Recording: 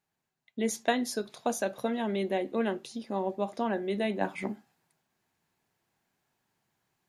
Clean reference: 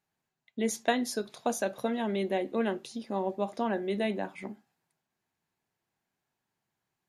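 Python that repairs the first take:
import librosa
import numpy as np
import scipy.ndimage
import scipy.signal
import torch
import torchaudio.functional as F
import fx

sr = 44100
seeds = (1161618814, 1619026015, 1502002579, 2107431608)

y = fx.gain(x, sr, db=fx.steps((0.0, 0.0), (4.21, -6.0)))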